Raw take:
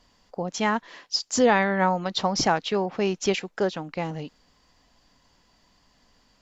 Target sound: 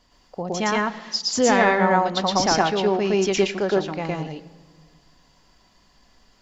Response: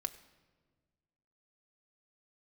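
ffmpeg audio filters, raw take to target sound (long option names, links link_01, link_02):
-filter_complex "[0:a]asplit=2[link_01][link_02];[1:a]atrim=start_sample=2205,adelay=115[link_03];[link_02][link_03]afir=irnorm=-1:irlink=0,volume=2dB[link_04];[link_01][link_04]amix=inputs=2:normalize=0"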